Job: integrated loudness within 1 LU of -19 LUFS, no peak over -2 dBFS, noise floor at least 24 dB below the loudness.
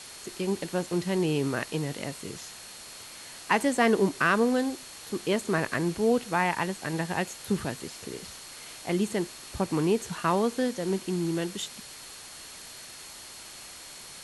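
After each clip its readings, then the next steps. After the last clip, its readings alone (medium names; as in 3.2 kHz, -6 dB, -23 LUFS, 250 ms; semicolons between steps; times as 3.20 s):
steady tone 4.3 kHz; tone level -51 dBFS; noise floor -45 dBFS; noise floor target -53 dBFS; loudness -28.5 LUFS; peak level -9.0 dBFS; loudness target -19.0 LUFS
-> band-stop 4.3 kHz, Q 30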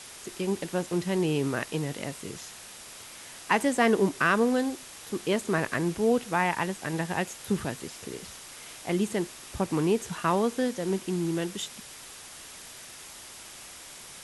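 steady tone not found; noise floor -46 dBFS; noise floor target -53 dBFS
-> noise reduction 7 dB, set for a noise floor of -46 dBFS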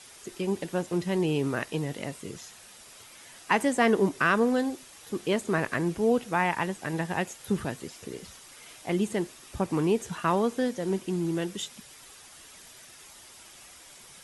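noise floor -51 dBFS; noise floor target -53 dBFS
-> noise reduction 6 dB, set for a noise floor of -51 dBFS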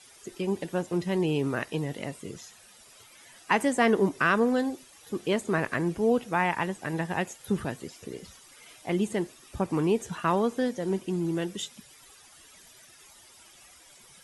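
noise floor -54 dBFS; loudness -28.5 LUFS; peak level -9.5 dBFS; loudness target -19.0 LUFS
-> trim +9.5 dB; peak limiter -2 dBFS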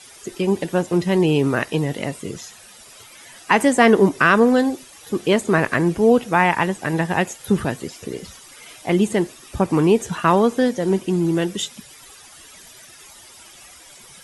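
loudness -19.0 LUFS; peak level -2.0 dBFS; noise floor -45 dBFS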